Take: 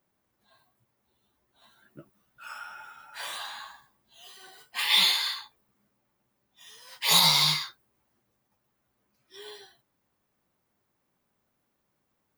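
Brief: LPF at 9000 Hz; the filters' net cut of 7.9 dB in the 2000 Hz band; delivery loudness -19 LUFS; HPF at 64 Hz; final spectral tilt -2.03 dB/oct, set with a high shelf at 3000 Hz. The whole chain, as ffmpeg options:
-af "highpass=64,lowpass=9k,equalizer=f=2k:t=o:g=-6,highshelf=f=3k:g=-8.5,volume=11.5dB"

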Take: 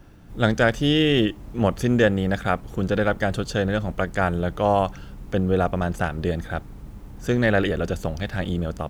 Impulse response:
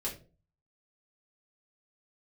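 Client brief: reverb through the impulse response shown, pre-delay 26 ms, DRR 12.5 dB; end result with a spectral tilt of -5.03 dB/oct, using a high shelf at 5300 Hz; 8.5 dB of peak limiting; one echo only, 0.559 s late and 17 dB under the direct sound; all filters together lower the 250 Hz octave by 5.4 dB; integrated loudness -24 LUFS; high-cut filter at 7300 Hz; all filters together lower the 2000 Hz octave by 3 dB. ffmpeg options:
-filter_complex "[0:a]lowpass=7.3k,equalizer=f=250:t=o:g=-7.5,equalizer=f=2k:t=o:g=-4.5,highshelf=f=5.3k:g=4,alimiter=limit=-16dB:level=0:latency=1,aecho=1:1:559:0.141,asplit=2[a][b];[1:a]atrim=start_sample=2205,adelay=26[c];[b][c]afir=irnorm=-1:irlink=0,volume=-14.5dB[d];[a][d]amix=inputs=2:normalize=0,volume=4dB"

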